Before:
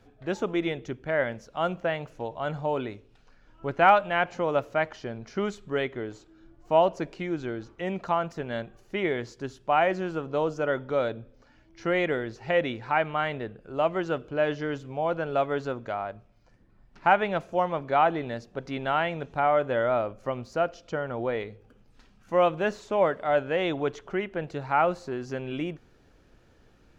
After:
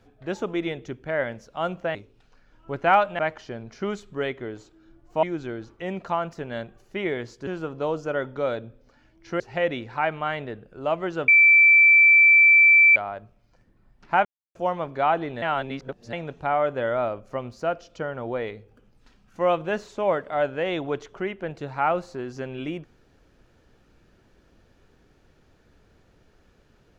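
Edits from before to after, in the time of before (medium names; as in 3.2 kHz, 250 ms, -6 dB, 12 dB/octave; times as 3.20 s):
1.95–2.90 s: delete
4.14–4.74 s: delete
6.78–7.22 s: delete
9.46–10.00 s: delete
11.93–12.33 s: delete
14.21–15.89 s: bleep 2.33 kHz -11 dBFS
17.18–17.48 s: mute
18.35–19.06 s: reverse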